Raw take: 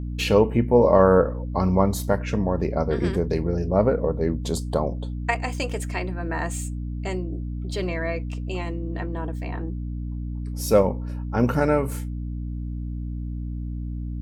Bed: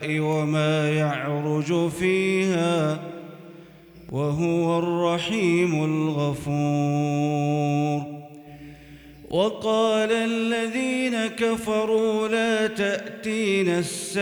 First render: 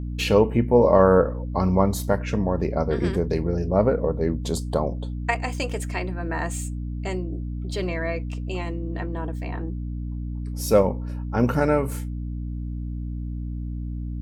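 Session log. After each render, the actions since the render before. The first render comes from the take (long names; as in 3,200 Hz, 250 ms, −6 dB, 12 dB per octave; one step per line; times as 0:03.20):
no processing that can be heard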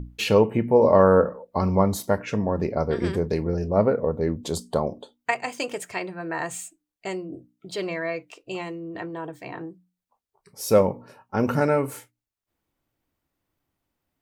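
mains-hum notches 60/120/180/240/300 Hz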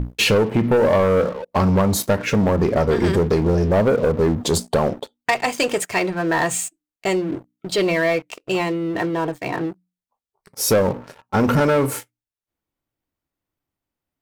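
downward compressor, threshold −20 dBFS, peak gain reduction 9.5 dB
leveller curve on the samples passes 3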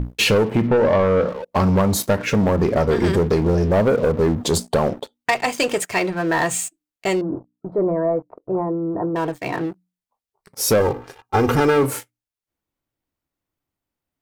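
0:00.67–0:01.29: high-frequency loss of the air 100 metres
0:07.21–0:09.16: inverse Chebyshev low-pass filter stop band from 2,700 Hz, stop band 50 dB
0:10.80–0:11.83: comb filter 2.5 ms, depth 73%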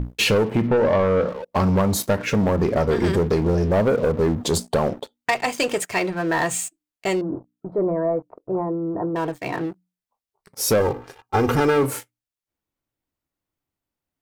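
level −2 dB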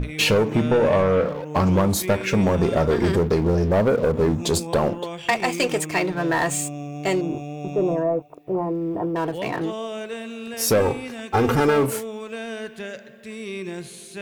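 mix in bed −10 dB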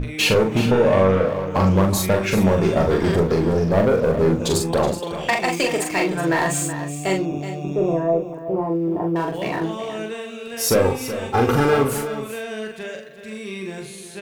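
double-tracking delay 42 ms −4 dB
single-tap delay 374 ms −11.5 dB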